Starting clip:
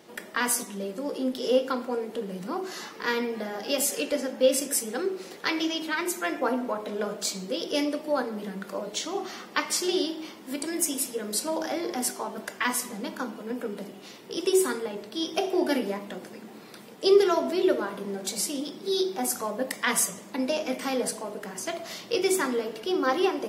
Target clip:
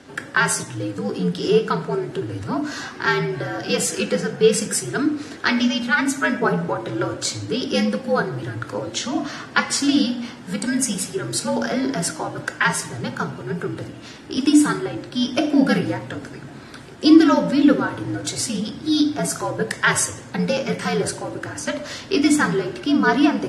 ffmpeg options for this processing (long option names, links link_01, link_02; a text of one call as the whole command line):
ffmpeg -i in.wav -af "highpass=120,equalizer=frequency=150:width_type=q:width=4:gain=5,equalizer=frequency=340:width_type=q:width=4:gain=5,equalizer=frequency=1600:width_type=q:width=4:gain=8,lowpass=frequency=9600:width=0.5412,lowpass=frequency=9600:width=1.3066,afreqshift=-79,volume=5.5dB" out.wav